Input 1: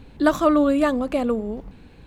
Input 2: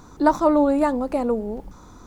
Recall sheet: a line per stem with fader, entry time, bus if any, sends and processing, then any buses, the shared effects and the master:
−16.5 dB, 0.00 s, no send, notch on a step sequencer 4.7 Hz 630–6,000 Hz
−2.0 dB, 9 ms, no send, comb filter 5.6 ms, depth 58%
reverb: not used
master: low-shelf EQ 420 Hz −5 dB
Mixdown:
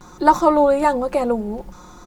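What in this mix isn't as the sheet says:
stem 1 −16.5 dB → −10.0 dB
stem 2 −2.0 dB → +5.0 dB

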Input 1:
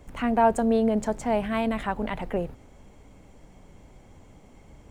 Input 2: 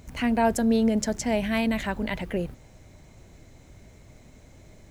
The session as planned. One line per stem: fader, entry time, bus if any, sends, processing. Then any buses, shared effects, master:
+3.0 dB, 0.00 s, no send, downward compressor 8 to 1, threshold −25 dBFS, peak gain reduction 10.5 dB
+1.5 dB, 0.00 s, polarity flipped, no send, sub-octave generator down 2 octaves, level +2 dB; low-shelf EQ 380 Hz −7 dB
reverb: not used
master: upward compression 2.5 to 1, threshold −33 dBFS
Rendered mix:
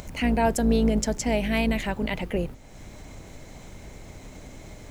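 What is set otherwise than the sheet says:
stem 1 +3.0 dB → −4.0 dB
stem 2: polarity flipped

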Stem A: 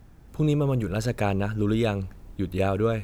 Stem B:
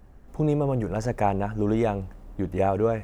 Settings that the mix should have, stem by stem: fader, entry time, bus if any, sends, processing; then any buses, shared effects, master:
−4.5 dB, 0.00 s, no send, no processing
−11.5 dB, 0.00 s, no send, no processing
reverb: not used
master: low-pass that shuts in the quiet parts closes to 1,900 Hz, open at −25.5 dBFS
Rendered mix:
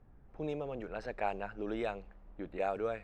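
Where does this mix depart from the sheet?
stem A −4.5 dB → −13.5 dB
stem B: polarity flipped

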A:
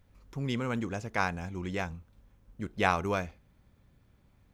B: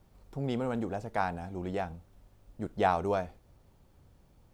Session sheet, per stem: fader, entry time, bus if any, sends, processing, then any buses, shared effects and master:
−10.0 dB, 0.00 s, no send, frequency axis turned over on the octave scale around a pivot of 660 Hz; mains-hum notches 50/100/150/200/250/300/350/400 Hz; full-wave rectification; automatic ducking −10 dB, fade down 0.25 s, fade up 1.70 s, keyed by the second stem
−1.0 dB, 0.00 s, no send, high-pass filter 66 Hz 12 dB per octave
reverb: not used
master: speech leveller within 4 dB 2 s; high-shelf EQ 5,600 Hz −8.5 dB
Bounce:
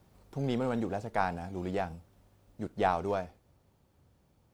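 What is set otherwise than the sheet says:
stem B: polarity flipped
master: missing high-shelf EQ 5,600 Hz −8.5 dB

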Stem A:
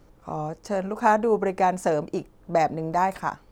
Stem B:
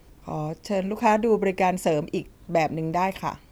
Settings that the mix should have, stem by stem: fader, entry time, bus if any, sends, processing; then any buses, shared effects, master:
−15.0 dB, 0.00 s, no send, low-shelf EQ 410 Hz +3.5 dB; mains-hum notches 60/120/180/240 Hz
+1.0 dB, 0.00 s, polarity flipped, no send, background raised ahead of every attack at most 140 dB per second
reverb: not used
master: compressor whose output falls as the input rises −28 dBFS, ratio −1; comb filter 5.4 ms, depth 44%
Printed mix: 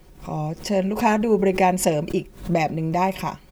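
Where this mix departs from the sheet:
stem B: polarity flipped
master: missing compressor whose output falls as the input rises −28 dBFS, ratio −1

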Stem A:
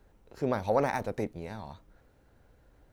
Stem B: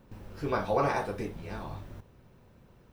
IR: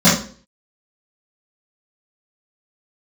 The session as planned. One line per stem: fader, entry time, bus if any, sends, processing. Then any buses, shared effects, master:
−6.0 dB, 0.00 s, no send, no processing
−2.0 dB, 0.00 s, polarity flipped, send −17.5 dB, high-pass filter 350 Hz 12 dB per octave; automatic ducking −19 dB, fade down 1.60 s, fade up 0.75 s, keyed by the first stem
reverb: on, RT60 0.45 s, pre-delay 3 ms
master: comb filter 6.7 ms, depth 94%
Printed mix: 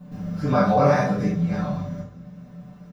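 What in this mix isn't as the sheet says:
stem A −6.0 dB → −15.0 dB
stem B: missing high-pass filter 350 Hz 12 dB per octave

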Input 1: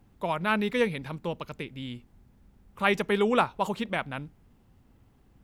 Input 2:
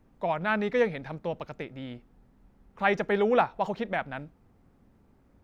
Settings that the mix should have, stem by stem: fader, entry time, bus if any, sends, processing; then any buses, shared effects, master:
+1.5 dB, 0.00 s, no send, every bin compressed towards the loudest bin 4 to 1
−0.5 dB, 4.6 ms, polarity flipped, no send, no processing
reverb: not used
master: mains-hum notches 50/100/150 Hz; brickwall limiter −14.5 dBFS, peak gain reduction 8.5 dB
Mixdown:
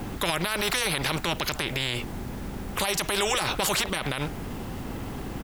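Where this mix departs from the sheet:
stem 1 +1.5 dB → +8.5 dB
master: missing mains-hum notches 50/100/150 Hz

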